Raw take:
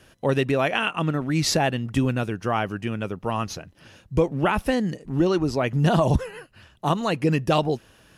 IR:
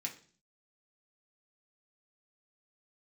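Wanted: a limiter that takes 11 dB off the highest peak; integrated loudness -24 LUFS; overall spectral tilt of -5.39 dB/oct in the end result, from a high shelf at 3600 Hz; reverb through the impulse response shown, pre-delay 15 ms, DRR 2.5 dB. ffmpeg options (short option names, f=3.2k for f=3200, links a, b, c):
-filter_complex "[0:a]highshelf=f=3.6k:g=5,alimiter=limit=-17.5dB:level=0:latency=1,asplit=2[a][b];[1:a]atrim=start_sample=2205,adelay=15[c];[b][c]afir=irnorm=-1:irlink=0,volume=-2dB[d];[a][d]amix=inputs=2:normalize=0,volume=2.5dB"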